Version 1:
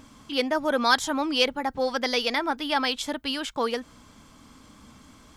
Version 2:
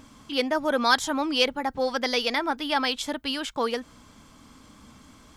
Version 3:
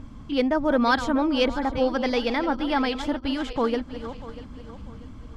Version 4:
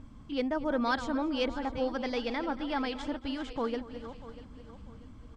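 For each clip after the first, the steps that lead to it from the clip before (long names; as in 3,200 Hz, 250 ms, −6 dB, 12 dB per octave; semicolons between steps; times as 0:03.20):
no processing that can be heard
feedback delay that plays each chunk backwards 321 ms, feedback 57%, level −12 dB; RIAA equalisation playback
slap from a distant wall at 39 metres, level −18 dB; level −8.5 dB; MP2 192 kbit/s 32,000 Hz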